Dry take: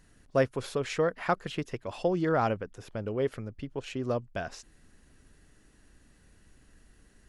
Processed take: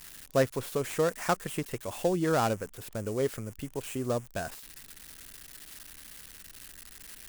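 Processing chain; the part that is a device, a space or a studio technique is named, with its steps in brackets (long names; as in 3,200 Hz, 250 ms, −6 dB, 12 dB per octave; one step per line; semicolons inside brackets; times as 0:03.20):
budget class-D amplifier (gap after every zero crossing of 0.11 ms; spike at every zero crossing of −29.5 dBFS)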